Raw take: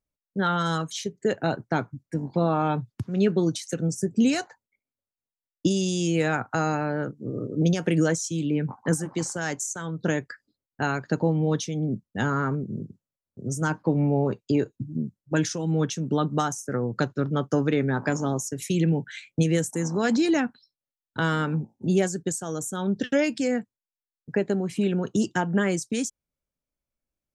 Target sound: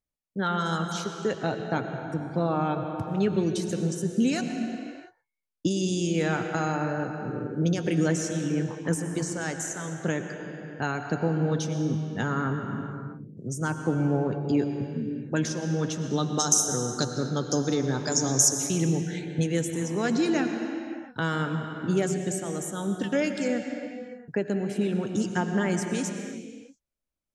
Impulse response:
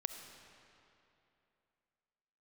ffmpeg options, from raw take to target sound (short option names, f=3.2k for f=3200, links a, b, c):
-filter_complex "[0:a]asettb=1/sr,asplit=3[a][b][c];[a]atrim=end=16.044[d];[b]atrim=start=16.04:end=18.56,asetpts=PTS-STARTPTS,afade=t=in:d=0.004:c=qsin,afade=t=out:st=2.516:d=0.004:c=qsin,highshelf=f=3.6k:t=q:w=3:g=12.5[e];[c]atrim=start=18.556[f];[d][e]acrossfade=d=0.004:c1=hsin:c2=qsin[g];[g][f]acrossfade=d=0.004:c1=qsin:c2=hsin[h];[1:a]atrim=start_sample=2205,afade=t=out:st=0.44:d=0.01,atrim=end_sample=19845,asetrate=24696,aresample=44100[i];[h][i]afir=irnorm=-1:irlink=0,volume=-4.5dB"